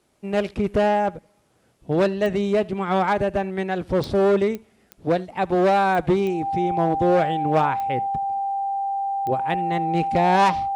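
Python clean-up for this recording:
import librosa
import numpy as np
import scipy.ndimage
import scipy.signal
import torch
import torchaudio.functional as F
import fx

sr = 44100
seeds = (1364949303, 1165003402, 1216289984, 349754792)

y = fx.fix_declick_ar(x, sr, threshold=10.0)
y = fx.notch(y, sr, hz=790.0, q=30.0)
y = fx.fix_echo_inverse(y, sr, delay_ms=77, level_db=-24.0)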